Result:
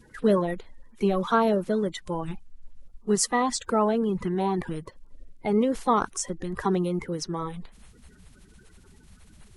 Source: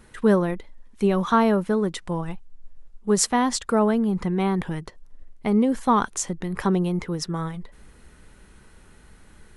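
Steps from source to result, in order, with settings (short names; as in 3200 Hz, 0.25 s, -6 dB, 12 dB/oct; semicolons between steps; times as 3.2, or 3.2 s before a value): bin magnitudes rounded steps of 30 dB; gain -2.5 dB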